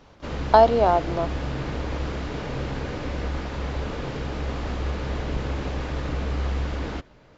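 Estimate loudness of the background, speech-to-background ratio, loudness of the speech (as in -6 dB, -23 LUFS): -30.0 LUFS, 10.0 dB, -20.0 LUFS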